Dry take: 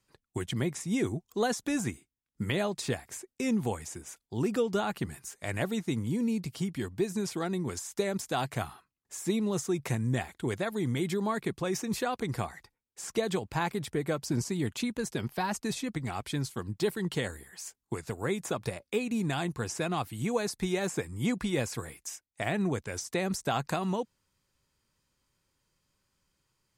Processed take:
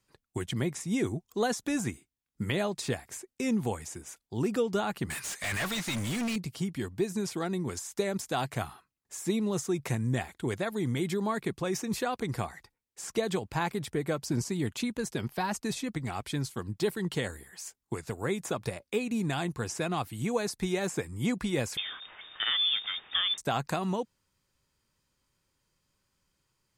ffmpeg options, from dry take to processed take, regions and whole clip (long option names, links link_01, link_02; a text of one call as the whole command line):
ffmpeg -i in.wav -filter_complex "[0:a]asettb=1/sr,asplit=3[link_01][link_02][link_03];[link_01]atrim=end=5.104[link_04];[link_02]atrim=start=5.1:end=6.36,asetpts=PTS-STARTPTS,afade=type=in:duration=0.004:curve=qsin,afade=type=out:start_time=1.256:duration=0.004:curve=qsin,equalizer=frequency=400:width=0.45:gain=-14.5,asplit=2[link_05][link_06];[link_06]highpass=frequency=720:poles=1,volume=34dB,asoftclip=type=tanh:threshold=-23.5dB[link_07];[link_05][link_07]amix=inputs=2:normalize=0,lowpass=frequency=3700:poles=1,volume=-6dB[link_08];[link_03]atrim=start=6.356[link_09];[link_04][link_08]acrossfade=duration=0.004:curve1=hsin:curve2=qsin[link_10];[link_10][link_09]acrossfade=duration=0.004:curve1=qsin:curve2=hsin,asettb=1/sr,asplit=3[link_11][link_12][link_13];[link_11]atrim=end=21.774[link_14];[link_12]atrim=start=21.77:end=23.38,asetpts=PTS-STARTPTS,afade=type=in:duration=0.004:curve=qsin,afade=type=out:start_time=1.606:duration=0.004:curve=qsin,aeval=exprs='val(0)+0.5*0.015*sgn(val(0))':channel_layout=same,lowpass=frequency=3100:width_type=q:width=0.5098,lowpass=frequency=3100:width_type=q:width=0.6013,lowpass=frequency=3100:width_type=q:width=0.9,lowpass=frequency=3100:width_type=q:width=2.563,afreqshift=-3700[link_15];[link_13]atrim=start=23.376[link_16];[link_14][link_15]acrossfade=duration=0.004:curve1=hsin:curve2=qsin[link_17];[link_17][link_16]acrossfade=duration=0.004:curve1=qsin:curve2=hsin" out.wav